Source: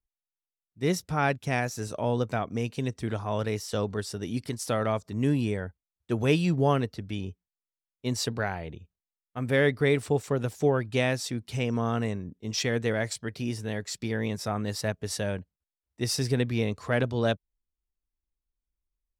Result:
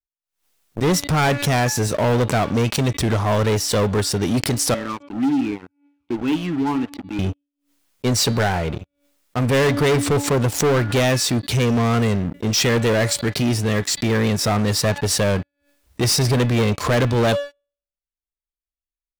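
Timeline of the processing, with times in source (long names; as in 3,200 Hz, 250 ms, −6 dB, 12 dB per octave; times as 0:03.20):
0:04.74–0:07.19: formant filter swept between two vowels i-u 1.8 Hz
whole clip: hum removal 285.8 Hz, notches 16; leveller curve on the samples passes 5; background raised ahead of every attack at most 130 dB per second; level −2.5 dB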